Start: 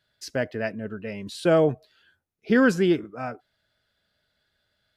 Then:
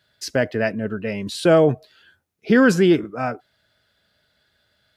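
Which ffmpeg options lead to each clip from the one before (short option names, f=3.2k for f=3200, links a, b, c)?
-filter_complex "[0:a]highpass=51,asplit=2[a][b];[b]alimiter=limit=-17dB:level=0:latency=1:release=27,volume=3dB[c];[a][c]amix=inputs=2:normalize=0"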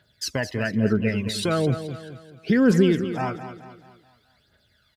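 -filter_complex "[0:a]acompressor=threshold=-20dB:ratio=2.5,aphaser=in_gain=1:out_gain=1:delay=1.2:decay=0.66:speed=1.1:type=triangular,asplit=2[a][b];[b]aecho=0:1:215|430|645|860|1075:0.282|0.124|0.0546|0.024|0.0106[c];[a][c]amix=inputs=2:normalize=0,volume=-1.5dB"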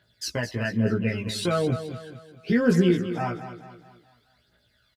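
-filter_complex "[0:a]asplit=2[a][b];[b]adelay=17,volume=-2.5dB[c];[a][c]amix=inputs=2:normalize=0,volume=-4dB"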